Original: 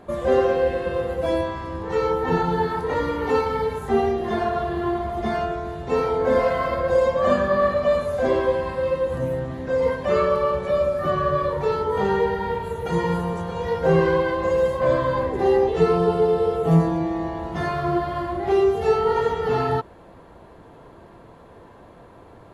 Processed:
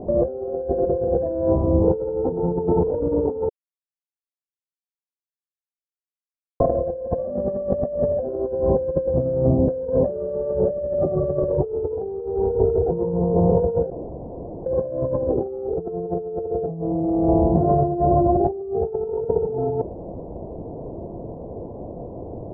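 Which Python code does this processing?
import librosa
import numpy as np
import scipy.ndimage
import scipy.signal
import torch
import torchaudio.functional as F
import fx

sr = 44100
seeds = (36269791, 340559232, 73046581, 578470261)

y = fx.comb(x, sr, ms=2.7, depth=0.65, at=(11.6, 12.91))
y = fx.edit(y, sr, fx.silence(start_s=3.49, length_s=3.11),
    fx.room_tone_fill(start_s=13.9, length_s=0.76), tone=tone)
y = scipy.signal.sosfilt(scipy.signal.butter(6, 710.0, 'lowpass', fs=sr, output='sos'), y)
y = fx.dynamic_eq(y, sr, hz=460.0, q=1.7, threshold_db=-32.0, ratio=4.0, max_db=4)
y = fx.over_compress(y, sr, threshold_db=-29.0, ratio=-1.0)
y = y * librosa.db_to_amplitude(6.0)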